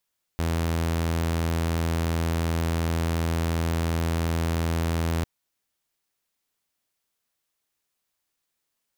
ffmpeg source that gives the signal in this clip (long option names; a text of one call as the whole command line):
ffmpeg -f lavfi -i "aevalsrc='0.0944*(2*mod(82.8*t,1)-1)':duration=4.85:sample_rate=44100" out.wav